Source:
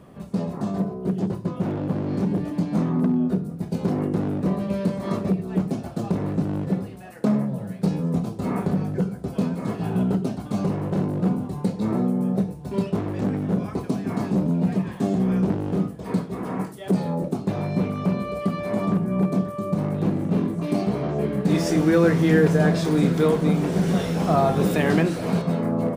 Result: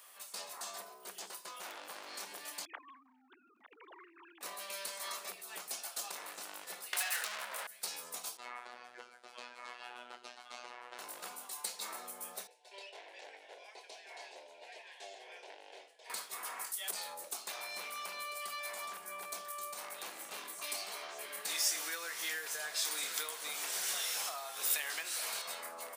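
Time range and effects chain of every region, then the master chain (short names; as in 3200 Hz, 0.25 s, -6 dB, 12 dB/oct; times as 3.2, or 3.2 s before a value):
2.65–4.41 sine-wave speech + compressor 8:1, threshold -30 dBFS
6.93–7.67 upward compressor, threshold -24 dBFS + overdrive pedal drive 35 dB, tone 2600 Hz, clips at -9.5 dBFS
8.37–10.99 LPF 2900 Hz + robotiser 122 Hz
12.47–16.1 BPF 390–2600 Hz + fixed phaser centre 510 Hz, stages 4
whole clip: HPF 840 Hz 12 dB/oct; compressor 6:1, threshold -35 dBFS; differentiator; gain +10.5 dB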